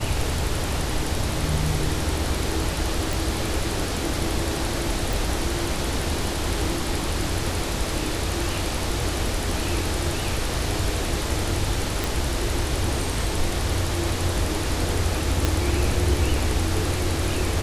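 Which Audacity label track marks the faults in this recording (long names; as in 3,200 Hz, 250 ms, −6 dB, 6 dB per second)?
3.130000	3.130000	click
5.130000	5.130000	click
12.040000	12.040000	click
15.450000	15.450000	click −7 dBFS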